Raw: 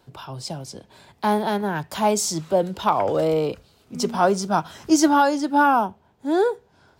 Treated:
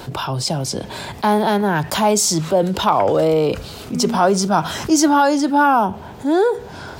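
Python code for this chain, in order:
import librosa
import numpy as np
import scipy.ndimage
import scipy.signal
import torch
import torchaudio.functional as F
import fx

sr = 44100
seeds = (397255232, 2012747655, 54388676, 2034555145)

y = fx.env_flatten(x, sr, amount_pct=50)
y = y * 10.0 ** (1.0 / 20.0)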